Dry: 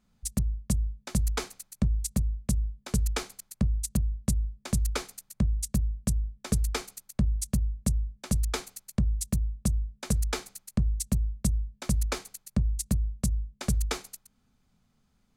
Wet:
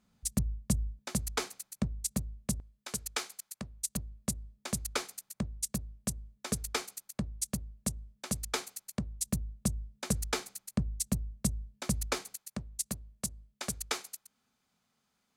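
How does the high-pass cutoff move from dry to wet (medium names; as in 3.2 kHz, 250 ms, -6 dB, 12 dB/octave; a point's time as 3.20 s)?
high-pass 6 dB/octave
90 Hz
from 0.99 s 240 Hz
from 2.60 s 960 Hz
from 3.96 s 360 Hz
from 9.26 s 170 Hz
from 12.36 s 650 Hz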